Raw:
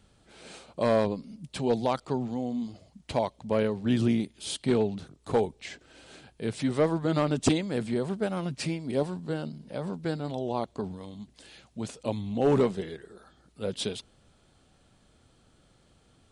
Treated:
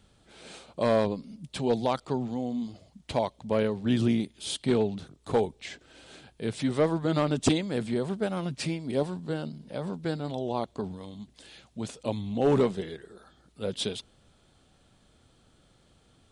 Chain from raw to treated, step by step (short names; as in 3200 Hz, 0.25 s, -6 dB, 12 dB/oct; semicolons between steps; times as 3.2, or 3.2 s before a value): bell 3500 Hz +3 dB 0.28 oct